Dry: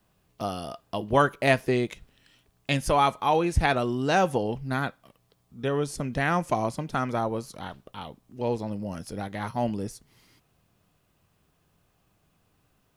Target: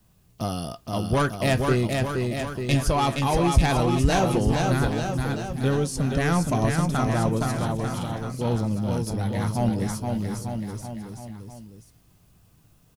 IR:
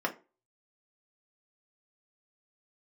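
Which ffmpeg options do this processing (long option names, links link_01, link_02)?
-filter_complex "[0:a]acrossover=split=5200[link_01][link_02];[link_01]asoftclip=type=tanh:threshold=-18.5dB[link_03];[link_02]alimiter=level_in=8.5dB:limit=-24dB:level=0:latency=1:release=383,volume=-8.5dB[link_04];[link_03][link_04]amix=inputs=2:normalize=0,bass=frequency=250:gain=10,treble=frequency=4000:gain=8,asplit=2[link_05][link_06];[link_06]adelay=18,volume=-14dB[link_07];[link_05][link_07]amix=inputs=2:normalize=0,aecho=1:1:470|893|1274|1616|1925:0.631|0.398|0.251|0.158|0.1"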